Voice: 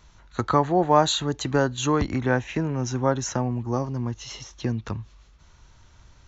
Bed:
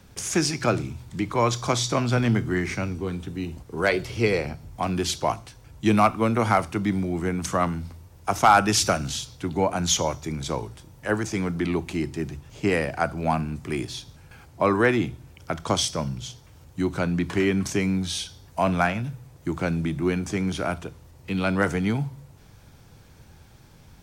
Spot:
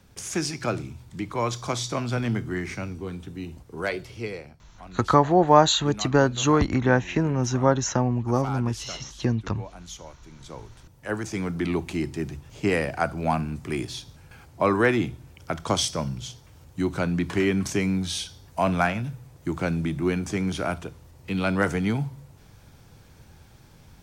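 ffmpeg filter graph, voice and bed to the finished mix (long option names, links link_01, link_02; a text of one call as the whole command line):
ffmpeg -i stem1.wav -i stem2.wav -filter_complex "[0:a]adelay=4600,volume=2.5dB[link_01];[1:a]volume=13.5dB,afade=type=out:start_time=3.68:duration=0.91:silence=0.199526,afade=type=in:start_time=10.32:duration=1.4:silence=0.125893[link_02];[link_01][link_02]amix=inputs=2:normalize=0" out.wav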